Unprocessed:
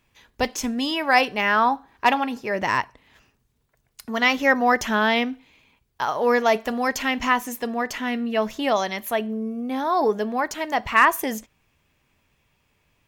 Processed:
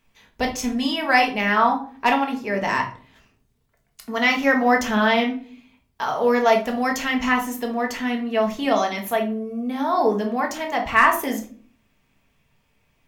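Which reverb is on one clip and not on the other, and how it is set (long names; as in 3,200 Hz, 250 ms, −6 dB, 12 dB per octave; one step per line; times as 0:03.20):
rectangular room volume 340 cubic metres, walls furnished, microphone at 1.6 metres
level −2 dB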